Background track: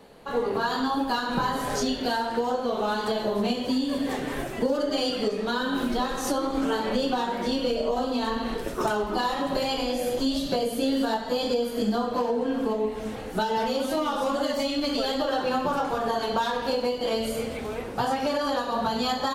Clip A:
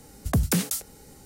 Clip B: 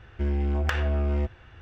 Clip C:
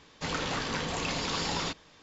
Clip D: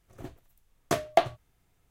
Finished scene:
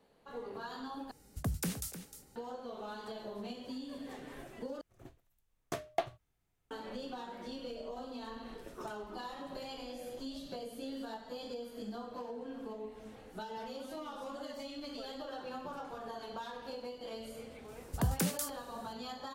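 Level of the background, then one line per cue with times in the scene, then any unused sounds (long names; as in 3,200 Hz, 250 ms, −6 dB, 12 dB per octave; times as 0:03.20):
background track −17.5 dB
0:01.11: overwrite with A −12.5 dB + single-tap delay 307 ms −11.5 dB
0:04.81: overwrite with D −11.5 dB
0:17.68: mix in A −9 dB
not used: B, C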